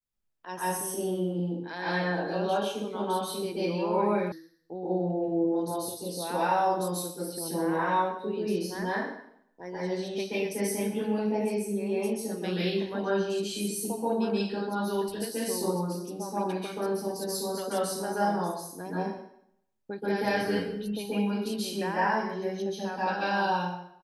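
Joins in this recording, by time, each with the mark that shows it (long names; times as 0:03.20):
0:04.32: cut off before it has died away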